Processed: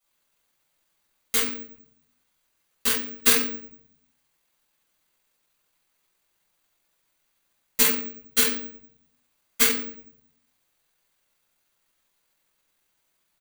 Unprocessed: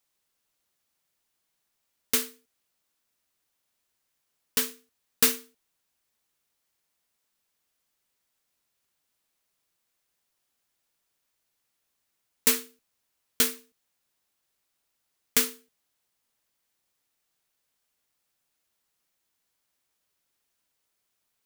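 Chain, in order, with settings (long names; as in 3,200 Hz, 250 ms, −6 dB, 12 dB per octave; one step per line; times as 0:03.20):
rectangular room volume 460 cubic metres, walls mixed, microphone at 6.7 metres
bad sample-rate conversion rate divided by 2×, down filtered, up zero stuff
tempo change 1.6×
low-shelf EQ 340 Hz −5 dB
notch filter 5,300 Hz, Q 8.7
level −6 dB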